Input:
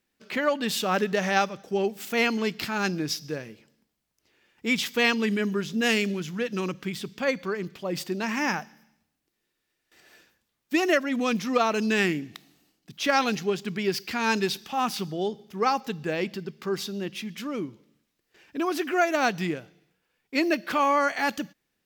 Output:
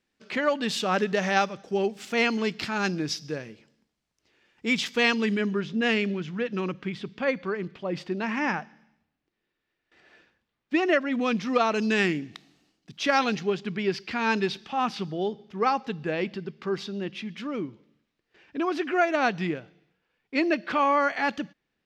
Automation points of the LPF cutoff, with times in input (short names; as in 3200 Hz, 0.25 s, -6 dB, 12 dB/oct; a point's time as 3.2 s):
5.19 s 6900 Hz
5.71 s 3100 Hz
10.91 s 3100 Hz
11.88 s 6300 Hz
12.99 s 6300 Hz
13.67 s 3800 Hz